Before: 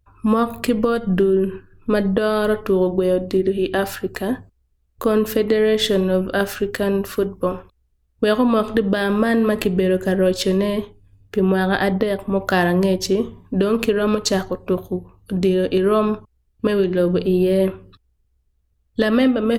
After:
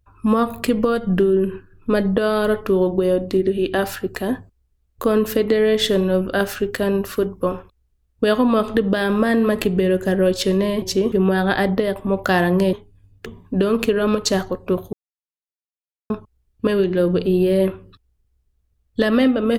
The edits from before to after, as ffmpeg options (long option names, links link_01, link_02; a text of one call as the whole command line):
ffmpeg -i in.wav -filter_complex "[0:a]asplit=7[link_01][link_02][link_03][link_04][link_05][link_06][link_07];[link_01]atrim=end=10.822[link_08];[link_02]atrim=start=12.958:end=13.262[link_09];[link_03]atrim=start=11.348:end=12.962[link_10];[link_04]atrim=start=10.818:end=11.352[link_11];[link_05]atrim=start=13.258:end=14.93,asetpts=PTS-STARTPTS,afade=type=out:start_time=1.668:duration=0.004:curve=hsin[link_12];[link_06]atrim=start=14.93:end=16.1,asetpts=PTS-STARTPTS,volume=0[link_13];[link_07]atrim=start=16.1,asetpts=PTS-STARTPTS,afade=type=in:duration=0.004:curve=hsin[link_14];[link_08][link_09]acrossfade=duration=0.004:curve1=hsin:curve2=hsin[link_15];[link_15][link_10]acrossfade=duration=0.004:curve1=hsin:curve2=hsin[link_16];[link_16][link_11]acrossfade=duration=0.004:curve1=hsin:curve2=hsin[link_17];[link_12][link_13][link_14]concat=n=3:v=0:a=1[link_18];[link_17][link_18]acrossfade=duration=0.004:curve1=hsin:curve2=hsin" out.wav